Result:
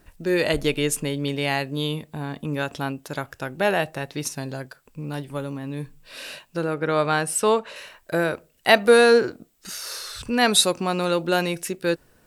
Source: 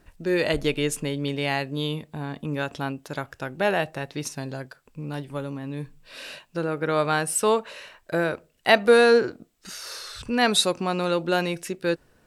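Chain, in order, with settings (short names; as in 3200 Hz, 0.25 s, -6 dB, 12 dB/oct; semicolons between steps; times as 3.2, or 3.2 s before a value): high shelf 10000 Hz +9 dB, from 6.74 s -3 dB, from 7.76 s +11 dB; gain +1.5 dB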